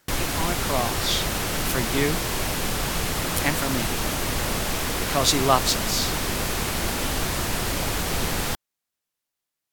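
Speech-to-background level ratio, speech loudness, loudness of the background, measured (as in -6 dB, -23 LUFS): -0.5 dB, -26.0 LUFS, -25.5 LUFS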